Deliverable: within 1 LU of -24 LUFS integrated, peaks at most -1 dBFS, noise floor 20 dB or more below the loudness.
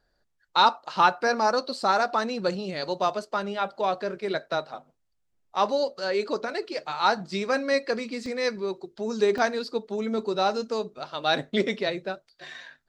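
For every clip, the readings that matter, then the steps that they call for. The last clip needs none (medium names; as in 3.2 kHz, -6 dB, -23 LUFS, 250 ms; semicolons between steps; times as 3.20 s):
dropouts 2; longest dropout 1.3 ms; loudness -26.5 LUFS; peak level -6.5 dBFS; loudness target -24.0 LUFS
-> interpolate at 8.26/9.38 s, 1.3 ms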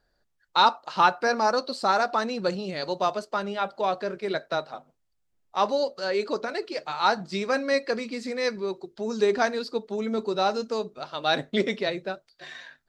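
dropouts 0; loudness -26.5 LUFS; peak level -6.5 dBFS; loudness target -24.0 LUFS
-> trim +2.5 dB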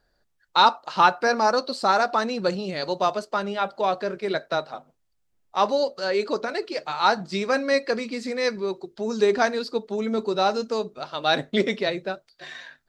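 loudness -24.0 LUFS; peak level -4.0 dBFS; noise floor -71 dBFS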